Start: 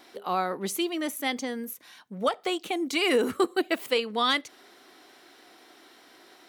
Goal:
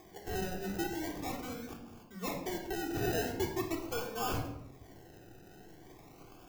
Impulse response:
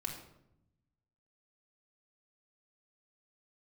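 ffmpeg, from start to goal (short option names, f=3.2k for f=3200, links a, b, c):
-filter_complex "[0:a]acompressor=mode=upward:threshold=-40dB:ratio=2.5,acrusher=samples=31:mix=1:aa=0.000001:lfo=1:lforange=18.6:lforate=0.42,asoftclip=type=tanh:threshold=-19.5dB,aexciter=amount=1.4:drive=5.6:freq=5.5k[a];[1:a]atrim=start_sample=2205[b];[a][b]afir=irnorm=-1:irlink=0,volume=-8.5dB"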